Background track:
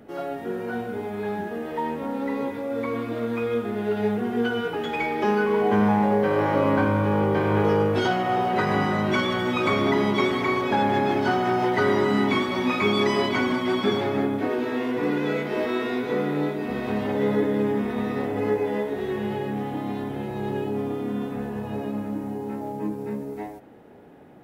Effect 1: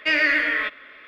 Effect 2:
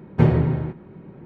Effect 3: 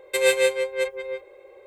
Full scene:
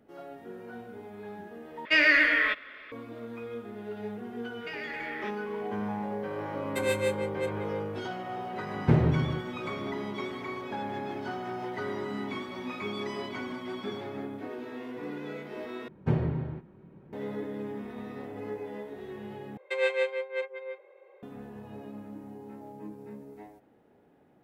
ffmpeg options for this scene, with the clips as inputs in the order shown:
-filter_complex "[1:a]asplit=2[s0][s1];[3:a]asplit=2[s2][s3];[2:a]asplit=2[s4][s5];[0:a]volume=0.211[s6];[s1]acompressor=threshold=0.0708:ratio=6:attack=3.2:release=140:knee=1:detection=peak[s7];[s2]equalizer=f=6200:w=0.42:g=-4.5[s8];[s4]aeval=exprs='clip(val(0),-1,0.266)':c=same[s9];[s5]bandreject=f=2100:w=18[s10];[s3]highpass=490,lowpass=2500[s11];[s6]asplit=4[s12][s13][s14][s15];[s12]atrim=end=1.854[s16];[s0]atrim=end=1.07,asetpts=PTS-STARTPTS,volume=0.841[s17];[s13]atrim=start=2.916:end=15.884[s18];[s10]atrim=end=1.25,asetpts=PTS-STARTPTS,volume=0.299[s19];[s14]atrim=start=17.126:end=19.574[s20];[s11]atrim=end=1.66,asetpts=PTS-STARTPTS,volume=0.562[s21];[s15]atrim=start=21.226[s22];[s7]atrim=end=1.07,asetpts=PTS-STARTPTS,volume=0.237,afade=t=in:d=0.004:c=hsin,afade=t=out:st=1.066:d=0.004:c=hsin,adelay=203301S[s23];[s8]atrim=end=1.66,asetpts=PTS-STARTPTS,volume=0.376,afade=t=in:d=0.004:c=hsin,afade=t=out:st=1.656:d=0.004:c=hsin,adelay=6620[s24];[s9]atrim=end=1.25,asetpts=PTS-STARTPTS,volume=0.531,afade=t=in:d=0.004:c=hsin,afade=t=out:st=1.246:d=0.004:c=hsin,adelay=8690[s25];[s16][s17]acrossfade=d=0.004:c1=hsin:c2=hsin[s26];[s26][s18]acrossfade=d=0.004:c1=hsin:c2=hsin[s27];[s27][s19]acrossfade=d=0.004:c1=hsin:c2=hsin[s28];[s28][s20]acrossfade=d=0.004:c1=hsin:c2=hsin[s29];[s29][s21]acrossfade=d=0.004:c1=hsin:c2=hsin[s30];[s30][s22]acrossfade=d=0.004:c1=hsin:c2=hsin[s31];[s31][s23][s24][s25]amix=inputs=4:normalize=0"

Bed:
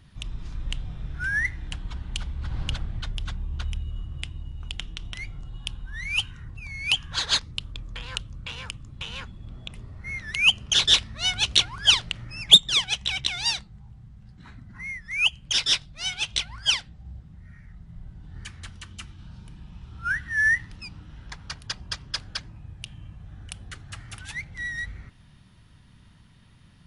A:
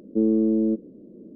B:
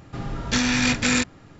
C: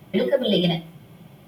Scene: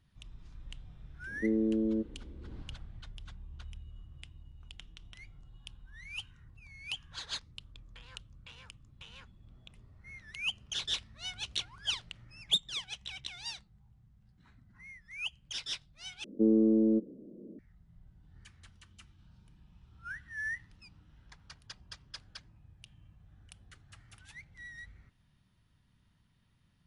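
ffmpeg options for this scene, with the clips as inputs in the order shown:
-filter_complex "[1:a]asplit=2[s0][s1];[0:a]volume=0.158,asplit=2[s2][s3];[s2]atrim=end=16.244[s4];[s1]atrim=end=1.35,asetpts=PTS-STARTPTS,volume=0.596[s5];[s3]atrim=start=17.586[s6];[s0]atrim=end=1.35,asetpts=PTS-STARTPTS,volume=0.355,afade=t=in:d=0.004:c=hsin,afade=t=out:st=1.346:d=0.004:c=hsin,adelay=1270[s7];[s4][s5]acrossfade=d=0.004:c1=hsin:c2=hsin[s8];[s8][s6]acrossfade=d=0.004:c1=hsin:c2=hsin[s9];[s9][s7]amix=inputs=2:normalize=0"

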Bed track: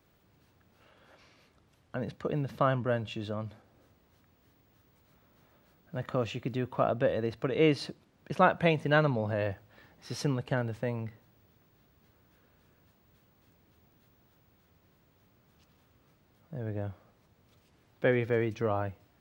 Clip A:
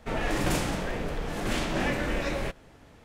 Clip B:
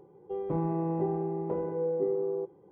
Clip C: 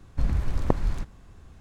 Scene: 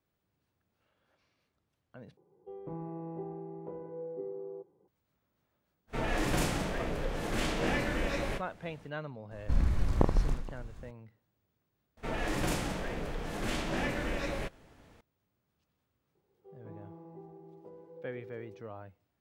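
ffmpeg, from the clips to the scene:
-filter_complex "[2:a]asplit=2[s0][s1];[1:a]asplit=2[s2][s3];[0:a]volume=0.178[s4];[s2]asplit=2[s5][s6];[s6]adelay=32,volume=0.266[s7];[s5][s7]amix=inputs=2:normalize=0[s8];[3:a]aecho=1:1:30|78|154.8|277.7|474.3:0.631|0.398|0.251|0.158|0.1[s9];[s1]flanger=delay=0.8:depth=9.5:regen=-49:speed=0.94:shape=sinusoidal[s10];[s4]asplit=2[s11][s12];[s11]atrim=end=2.174[s13];[s0]atrim=end=2.71,asetpts=PTS-STARTPTS,volume=0.282[s14];[s12]atrim=start=4.876[s15];[s8]atrim=end=3.04,asetpts=PTS-STARTPTS,volume=0.668,afade=t=in:d=0.05,afade=t=out:st=2.99:d=0.05,adelay=5870[s16];[s9]atrim=end=1.6,asetpts=PTS-STARTPTS,volume=0.631,afade=t=in:d=0.004:c=hsin,afade=t=out:st=1.596:d=0.004:c=hsin,adelay=9310[s17];[s3]atrim=end=3.04,asetpts=PTS-STARTPTS,volume=0.562,afade=t=in:d=0.004:c=hsin,afade=t=out:st=3.036:d=0.004:c=hsin,adelay=11970[s18];[s10]atrim=end=2.71,asetpts=PTS-STARTPTS,volume=0.158,afade=t=in:d=0.004:c=hsin,afade=t=out:st=2.706:d=0.004:c=hsin,adelay=16150[s19];[s13][s14]acrossfade=d=0.004:c1=hsin:c2=hsin[s20];[s20][s15]acrossfade=d=0.004:c1=hsin:c2=hsin[s21];[s21][s16][s17][s18][s19]amix=inputs=5:normalize=0"

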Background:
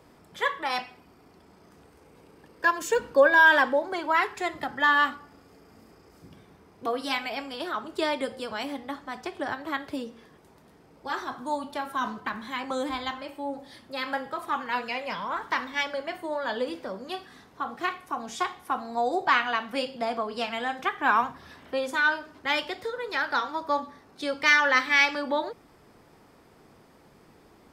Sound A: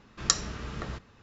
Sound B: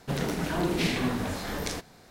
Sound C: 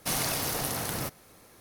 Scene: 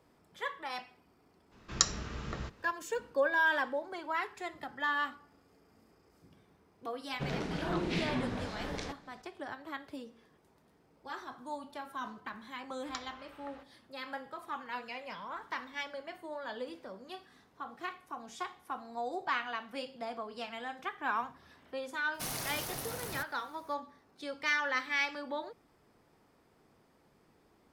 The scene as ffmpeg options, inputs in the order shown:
-filter_complex "[1:a]asplit=2[s0][s1];[0:a]volume=0.282[s2];[2:a]lowpass=4900[s3];[s1]acrossover=split=510 3800:gain=0.126 1 0.126[s4][s5][s6];[s4][s5][s6]amix=inputs=3:normalize=0[s7];[s0]atrim=end=1.22,asetpts=PTS-STARTPTS,volume=0.708,afade=t=in:d=0.02,afade=t=out:st=1.2:d=0.02,adelay=1510[s8];[s3]atrim=end=2.1,asetpts=PTS-STARTPTS,volume=0.473,afade=t=in:d=0.004:c=hsin,afade=t=out:st=2.096:d=0.004:c=hsin,adelay=7120[s9];[s7]atrim=end=1.22,asetpts=PTS-STARTPTS,volume=0.266,afade=t=in:d=0.004:c=hsin,afade=t=out:st=1.216:d=0.004:c=hsin,adelay=12650[s10];[3:a]atrim=end=1.6,asetpts=PTS-STARTPTS,volume=0.355,afade=t=in:d=0.004:c=hsin,afade=t=out:st=1.596:d=0.004:c=hsin,adelay=22140[s11];[s2][s8][s9][s10][s11]amix=inputs=5:normalize=0"

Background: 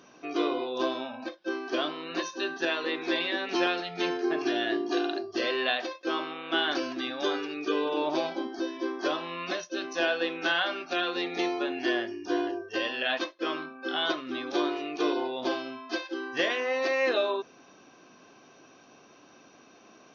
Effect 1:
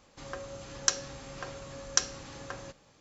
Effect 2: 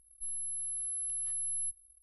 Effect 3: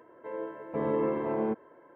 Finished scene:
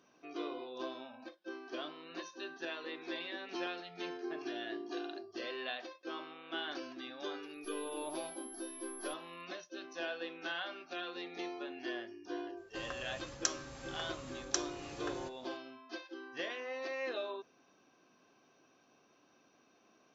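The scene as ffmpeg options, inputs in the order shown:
-filter_complex "[0:a]volume=0.224[s0];[1:a]dynaudnorm=f=120:g=3:m=2.51[s1];[2:a]atrim=end=2.02,asetpts=PTS-STARTPTS,volume=0.178,afade=t=in:d=0.004:c=hsin,afade=t=out:st=2.016:d=0.004:c=hsin,adelay=7430[s2];[s1]atrim=end=3,asetpts=PTS-STARTPTS,volume=0.251,afade=t=in:d=0.004:c=hsin,afade=t=out:st=2.996:d=0.004:c=hsin,adelay=12570[s3];[s0][s2][s3]amix=inputs=3:normalize=0"

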